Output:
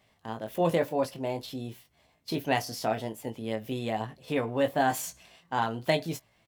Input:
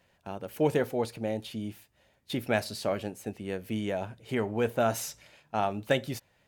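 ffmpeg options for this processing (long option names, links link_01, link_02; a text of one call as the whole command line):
ffmpeg -i in.wav -filter_complex "[0:a]asplit=2[link_01][link_02];[link_02]adelay=21,volume=-6dB[link_03];[link_01][link_03]amix=inputs=2:normalize=0,asetrate=50951,aresample=44100,atempo=0.865537" out.wav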